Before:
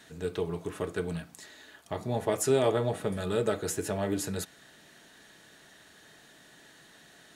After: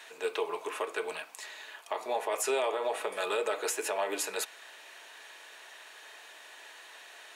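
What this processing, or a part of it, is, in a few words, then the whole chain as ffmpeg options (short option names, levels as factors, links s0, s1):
laptop speaker: -af "highpass=f=440:w=0.5412,highpass=f=440:w=1.3066,equalizer=f=990:t=o:w=0.51:g=8,equalizer=f=2500:t=o:w=0.48:g=9.5,alimiter=limit=0.0631:level=0:latency=1:release=103,volume=1.41"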